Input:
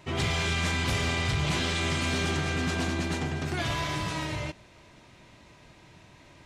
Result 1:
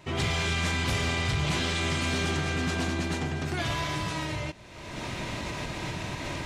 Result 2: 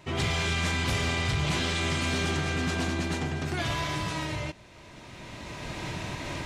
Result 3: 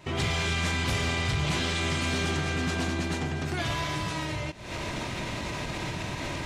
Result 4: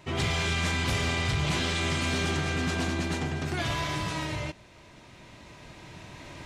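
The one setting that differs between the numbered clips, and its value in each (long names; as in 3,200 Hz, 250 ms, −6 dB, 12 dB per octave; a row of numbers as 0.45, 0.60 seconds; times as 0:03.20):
camcorder AGC, rising by: 36, 14, 89, 5.2 dB per second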